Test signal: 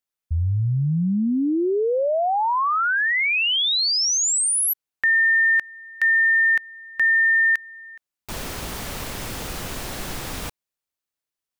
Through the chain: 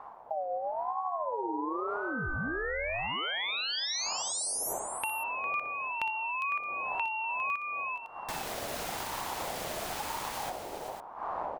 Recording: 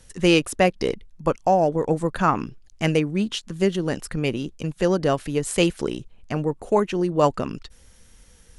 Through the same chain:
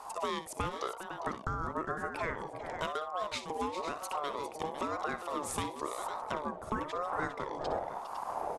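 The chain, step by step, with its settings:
wind on the microphone 210 Hz −33 dBFS
downward compressor 6 to 1, threshold −31 dBFS
multi-tap delay 61/405/505 ms −12.5/−11/−10 dB
ring modulator whose carrier an LFO sweeps 780 Hz, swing 20%, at 0.98 Hz

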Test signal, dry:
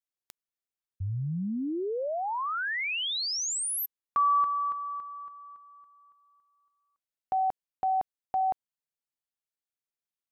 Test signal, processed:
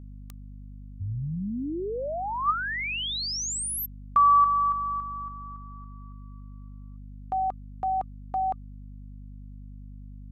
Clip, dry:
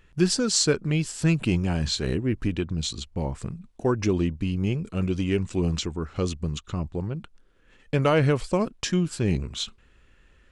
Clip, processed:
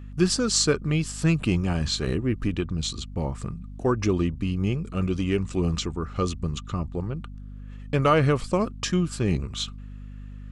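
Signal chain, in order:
hollow resonant body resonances 1,200 Hz, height 12 dB, ringing for 45 ms
mains hum 50 Hz, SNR 13 dB

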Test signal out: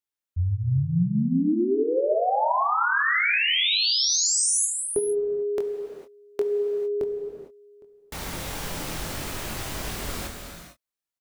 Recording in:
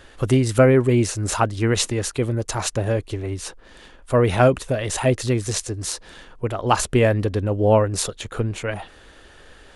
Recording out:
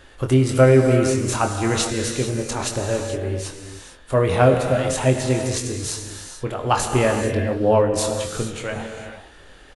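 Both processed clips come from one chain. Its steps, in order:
double-tracking delay 23 ms −7 dB
reverb whose tail is shaped and stops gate 480 ms flat, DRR 3.5 dB
level −2 dB

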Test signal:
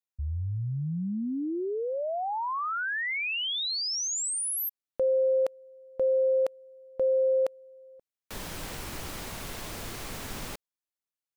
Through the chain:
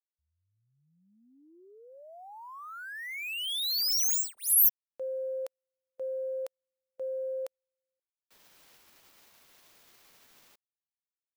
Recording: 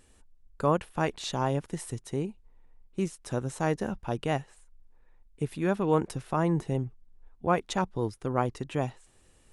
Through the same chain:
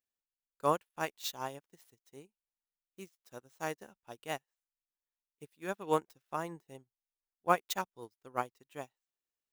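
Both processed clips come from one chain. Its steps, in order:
running median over 5 samples
RIAA equalisation recording
expander for the loud parts 2.5 to 1, over −46 dBFS
level +1 dB

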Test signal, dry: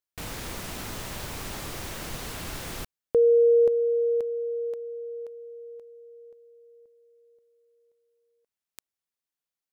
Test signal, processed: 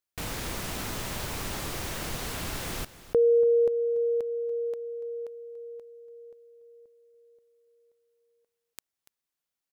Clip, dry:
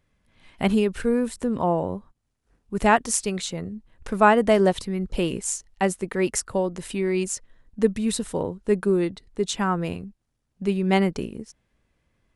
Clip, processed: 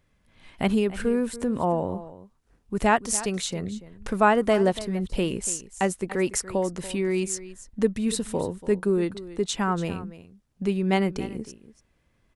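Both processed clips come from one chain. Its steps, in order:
in parallel at 0 dB: downward compressor, threshold −30 dBFS
on the sum: single-tap delay 287 ms −16 dB
level −4 dB

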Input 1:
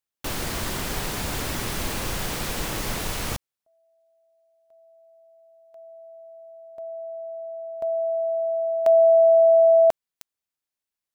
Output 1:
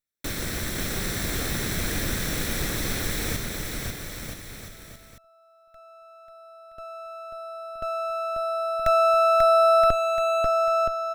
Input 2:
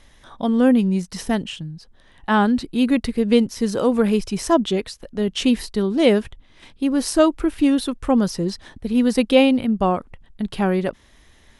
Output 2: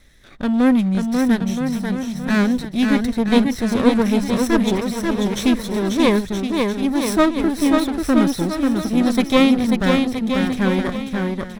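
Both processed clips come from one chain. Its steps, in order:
lower of the sound and its delayed copy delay 0.52 ms
on a send: bouncing-ball delay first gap 540 ms, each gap 0.8×, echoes 5

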